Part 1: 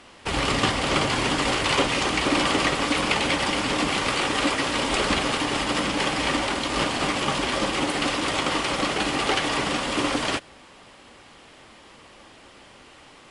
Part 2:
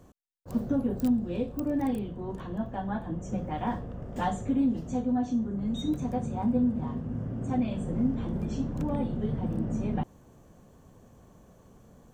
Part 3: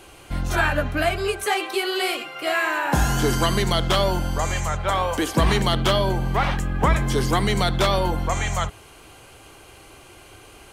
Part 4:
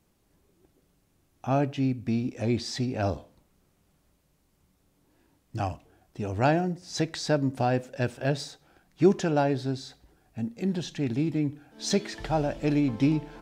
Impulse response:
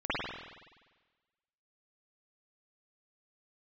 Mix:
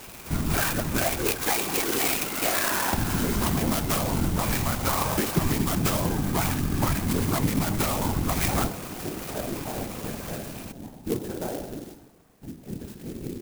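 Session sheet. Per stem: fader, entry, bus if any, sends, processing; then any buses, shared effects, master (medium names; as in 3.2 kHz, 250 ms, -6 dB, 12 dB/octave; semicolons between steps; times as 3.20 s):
-16.0 dB, 0.00 s, no send, none
-16.0 dB, 0.85 s, send -8.5 dB, none
+2.0 dB, 0.00 s, no send, graphic EQ with 31 bands 200 Hz +12 dB, 500 Hz -10 dB, 2.5 kHz +10 dB; compression, threshold -24 dBFS, peak gain reduction 12.5 dB
-10.5 dB, 2.05 s, send -13 dB, none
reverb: on, RT60 1.3 s, pre-delay 47 ms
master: whisper effect; sampling jitter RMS 0.089 ms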